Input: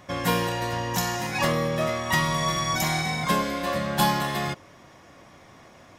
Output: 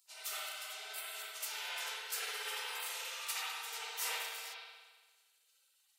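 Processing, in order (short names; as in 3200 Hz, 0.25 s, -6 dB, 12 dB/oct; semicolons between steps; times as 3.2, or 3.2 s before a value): spectral gate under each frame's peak -30 dB weak; steep high-pass 420 Hz 72 dB/oct; spring tank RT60 1.4 s, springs 57 ms, chirp 45 ms, DRR -8 dB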